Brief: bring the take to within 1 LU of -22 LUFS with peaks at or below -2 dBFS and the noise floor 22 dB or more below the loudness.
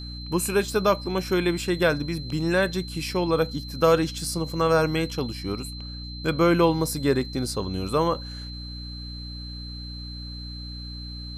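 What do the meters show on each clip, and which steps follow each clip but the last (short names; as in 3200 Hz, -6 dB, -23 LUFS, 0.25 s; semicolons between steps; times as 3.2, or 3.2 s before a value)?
hum 60 Hz; harmonics up to 300 Hz; hum level -34 dBFS; steady tone 4100 Hz; tone level -39 dBFS; loudness -24.5 LUFS; peak -7.5 dBFS; loudness target -22.0 LUFS
-> notches 60/120/180/240/300 Hz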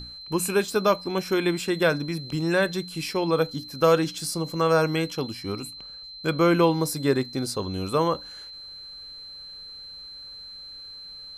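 hum none; steady tone 4100 Hz; tone level -39 dBFS
-> notch 4100 Hz, Q 30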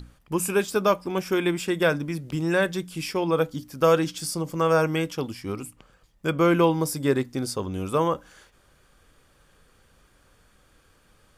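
steady tone none; loudness -25.0 LUFS; peak -8.0 dBFS; loudness target -22.0 LUFS
-> gain +3 dB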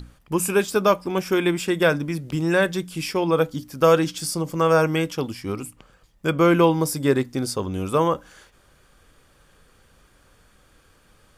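loudness -22.0 LUFS; peak -5.0 dBFS; noise floor -58 dBFS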